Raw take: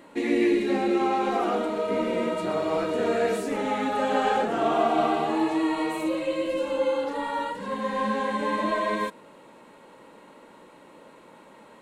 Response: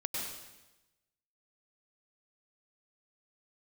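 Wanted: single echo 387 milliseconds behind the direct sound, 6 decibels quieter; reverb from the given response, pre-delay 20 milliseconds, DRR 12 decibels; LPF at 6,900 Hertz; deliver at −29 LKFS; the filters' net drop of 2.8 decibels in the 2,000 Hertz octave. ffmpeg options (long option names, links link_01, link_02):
-filter_complex "[0:a]lowpass=6900,equalizer=frequency=2000:width_type=o:gain=-3.5,aecho=1:1:387:0.501,asplit=2[link_01][link_02];[1:a]atrim=start_sample=2205,adelay=20[link_03];[link_02][link_03]afir=irnorm=-1:irlink=0,volume=-15.5dB[link_04];[link_01][link_04]amix=inputs=2:normalize=0,volume=-4dB"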